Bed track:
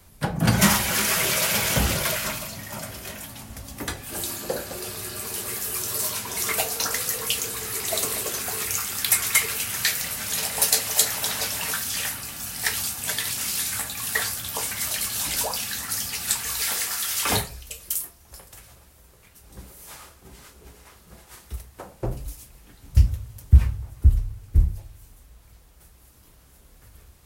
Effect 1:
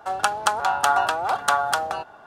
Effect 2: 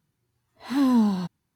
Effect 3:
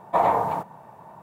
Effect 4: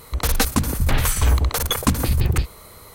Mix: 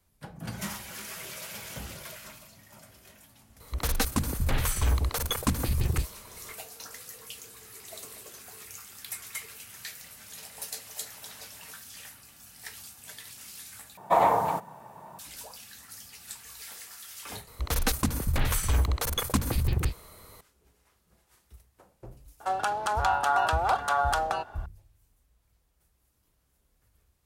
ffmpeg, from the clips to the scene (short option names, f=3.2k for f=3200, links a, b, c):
-filter_complex "[4:a]asplit=2[a][b];[0:a]volume=-18dB[c];[3:a]highshelf=f=3.3k:g=10.5[d];[1:a]alimiter=level_in=12dB:limit=-1dB:release=50:level=0:latency=1[e];[c]asplit=2[f][g];[f]atrim=end=13.974[h];[d]atrim=end=1.22,asetpts=PTS-STARTPTS,volume=-2dB[i];[g]atrim=start=15.186[j];[a]atrim=end=2.94,asetpts=PTS-STARTPTS,volume=-8dB,afade=t=in:d=0.004:c=hsin,afade=t=out:st=2.936:d=0.004:c=hsin,adelay=3600[k];[b]atrim=end=2.94,asetpts=PTS-STARTPTS,volume=-7.5dB,afade=t=in:d=0.004:c=hsin,afade=t=out:st=2.936:d=0.004:c=hsin,adelay=17470[l];[e]atrim=end=2.26,asetpts=PTS-STARTPTS,volume=-13.5dB,afade=t=in:d=0.004:c=hsin,afade=t=out:st=2.256:d=0.004:c=hsin,adelay=22400[m];[h][i]acrossfade=d=0.004:c1=hsin:c2=hsin[n];[n][j]acrossfade=d=0.004:c1=hsin:c2=hsin[o];[o][k][l][m]amix=inputs=4:normalize=0"